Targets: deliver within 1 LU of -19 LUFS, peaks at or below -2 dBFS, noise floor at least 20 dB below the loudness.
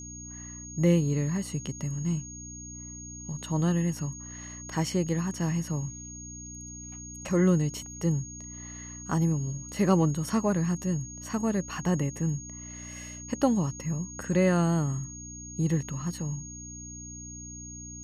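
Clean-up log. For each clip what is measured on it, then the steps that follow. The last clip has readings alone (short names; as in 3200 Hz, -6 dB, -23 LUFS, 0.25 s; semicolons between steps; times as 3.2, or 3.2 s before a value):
hum 60 Hz; harmonics up to 300 Hz; hum level -44 dBFS; steady tone 6600 Hz; tone level -42 dBFS; loudness -29.0 LUFS; peak -11.0 dBFS; loudness target -19.0 LUFS
-> de-hum 60 Hz, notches 5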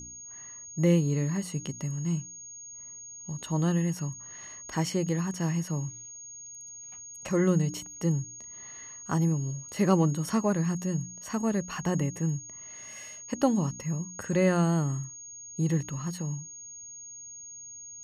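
hum none; steady tone 6600 Hz; tone level -42 dBFS
-> notch 6600 Hz, Q 30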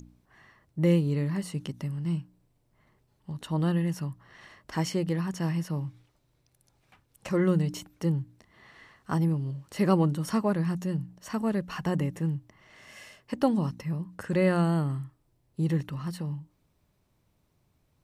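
steady tone none; loudness -29.0 LUFS; peak -11.0 dBFS; loudness target -19.0 LUFS
-> gain +10 dB; limiter -2 dBFS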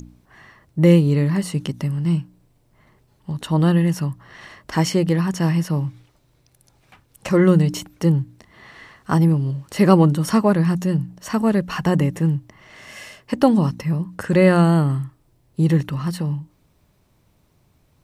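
loudness -19.5 LUFS; peak -2.0 dBFS; noise floor -61 dBFS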